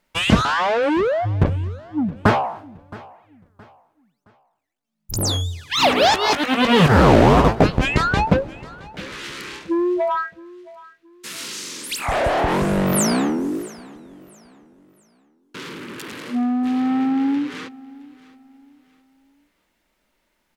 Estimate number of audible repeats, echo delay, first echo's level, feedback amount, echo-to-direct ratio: 2, 669 ms, −21.0 dB, 34%, −20.5 dB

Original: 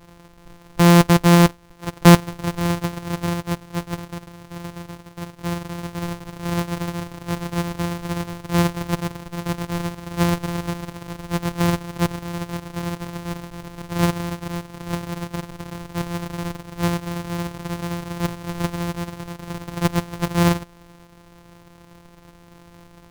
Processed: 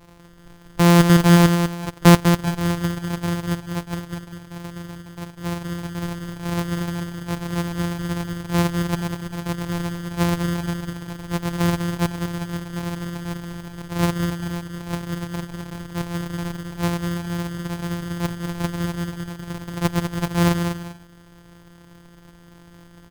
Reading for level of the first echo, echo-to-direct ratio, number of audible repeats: −6.5 dB, −6.0 dB, 2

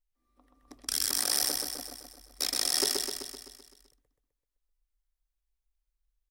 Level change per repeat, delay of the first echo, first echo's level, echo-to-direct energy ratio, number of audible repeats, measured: −4.5 dB, 128 ms, −3.5 dB, −1.5 dB, 7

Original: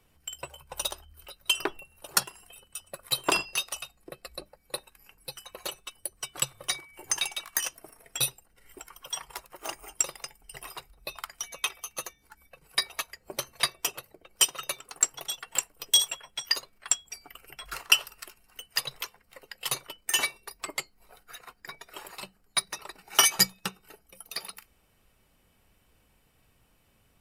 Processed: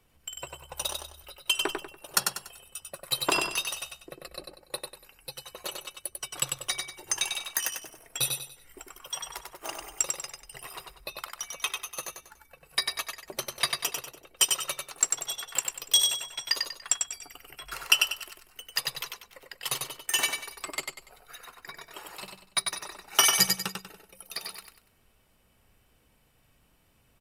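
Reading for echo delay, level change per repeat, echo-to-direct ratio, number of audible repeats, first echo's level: 96 ms, −9.5 dB, −4.0 dB, 4, −4.5 dB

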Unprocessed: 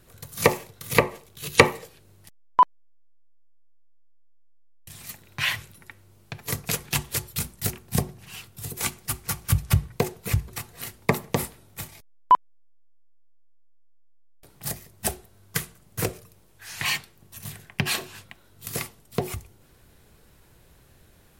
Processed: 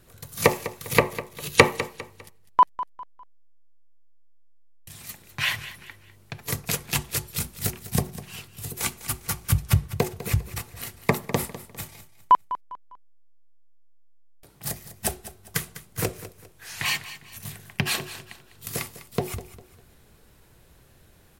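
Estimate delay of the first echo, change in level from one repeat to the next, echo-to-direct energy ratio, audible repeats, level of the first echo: 201 ms, −9.5 dB, −14.0 dB, 3, −14.5 dB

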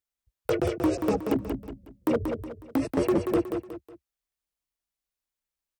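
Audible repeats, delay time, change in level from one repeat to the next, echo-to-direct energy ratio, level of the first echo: 3, 183 ms, −8.5 dB, −5.5 dB, −6.0 dB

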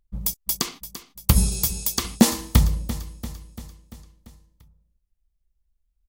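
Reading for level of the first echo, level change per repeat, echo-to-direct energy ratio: −13.5 dB, −4.5 dB, −11.5 dB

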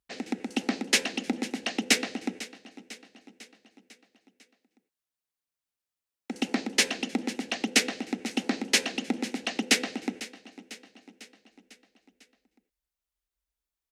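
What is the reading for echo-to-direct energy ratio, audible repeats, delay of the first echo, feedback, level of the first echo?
−15.0 dB, 4, 499 ms, 58%, −17.0 dB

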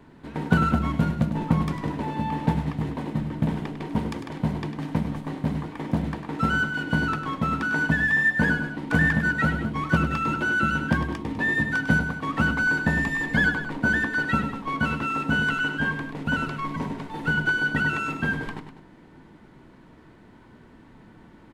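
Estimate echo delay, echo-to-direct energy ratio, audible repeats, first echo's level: 100 ms, −8.0 dB, 2, −9.5 dB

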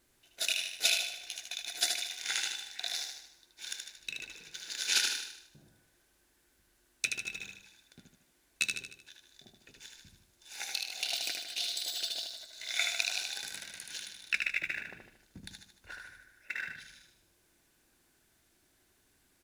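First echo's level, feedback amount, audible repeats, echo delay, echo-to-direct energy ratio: −4.5 dB, 49%, 5, 76 ms, −3.5 dB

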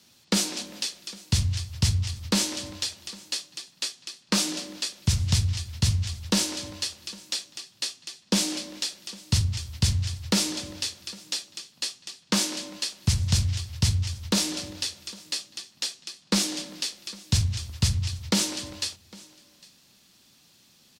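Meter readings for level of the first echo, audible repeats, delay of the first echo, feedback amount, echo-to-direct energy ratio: −23.0 dB, 1, 805 ms, repeats not evenly spaced, −23.0 dB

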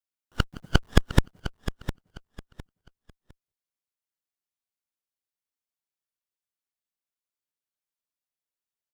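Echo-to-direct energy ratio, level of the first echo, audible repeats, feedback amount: −11.5 dB, −12.0 dB, 2, 24%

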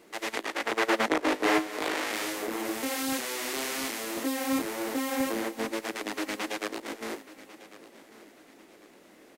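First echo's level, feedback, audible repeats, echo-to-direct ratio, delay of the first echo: −17.5 dB, 33%, 2, −17.0 dB, 1,096 ms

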